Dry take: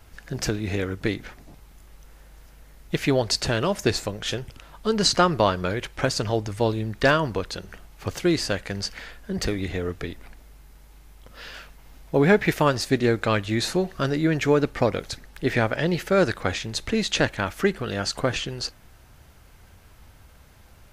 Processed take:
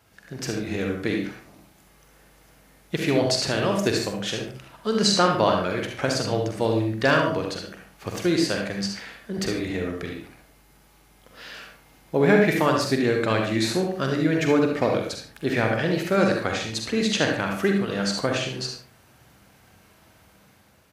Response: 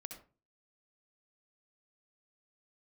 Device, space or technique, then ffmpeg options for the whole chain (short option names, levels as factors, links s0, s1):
far laptop microphone: -filter_complex "[0:a]asettb=1/sr,asplit=3[s0][s1][s2];[s0]atrim=end=14.874[s3];[s1]atrim=start=14.87:end=15.54,asetpts=PTS-STARTPTS,afade=t=in:d=0.004:c=qsin,afade=t=out:st=0.666:d=0.004:c=qsin,bandreject=f=2000:w=9.2[s4];[s2]atrim=start=15.536[s5];[s3][s4]acrossfade=d=0.004:c1=hsin:c2=qsin[s6];[s6][s5]acrossfade=d=0.004:c1=qsin:c2=hsin[s7];[1:a]atrim=start_sample=2205[s8];[s7][s8]afir=irnorm=-1:irlink=0,highpass=120,dynaudnorm=f=180:g=7:m=1.58,aecho=1:1:45|76:0.376|0.251"